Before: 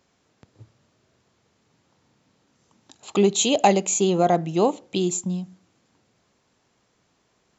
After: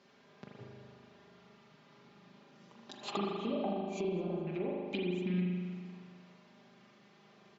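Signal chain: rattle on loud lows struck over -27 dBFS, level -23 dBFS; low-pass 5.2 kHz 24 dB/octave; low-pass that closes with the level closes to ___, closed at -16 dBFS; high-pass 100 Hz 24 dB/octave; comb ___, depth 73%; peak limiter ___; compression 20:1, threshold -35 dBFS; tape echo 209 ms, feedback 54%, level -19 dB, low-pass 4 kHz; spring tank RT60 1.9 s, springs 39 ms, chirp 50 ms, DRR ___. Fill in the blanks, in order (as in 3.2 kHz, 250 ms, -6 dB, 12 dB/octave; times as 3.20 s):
500 Hz, 5 ms, -13 dBFS, -2.5 dB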